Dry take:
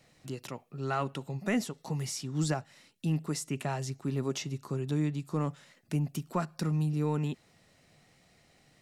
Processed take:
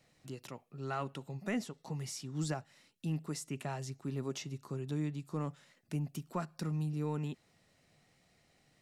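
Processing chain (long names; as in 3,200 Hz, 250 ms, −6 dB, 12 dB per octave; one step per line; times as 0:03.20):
0:01.51–0:02.07: high-shelf EQ 9,600 Hz −7 dB
level −6 dB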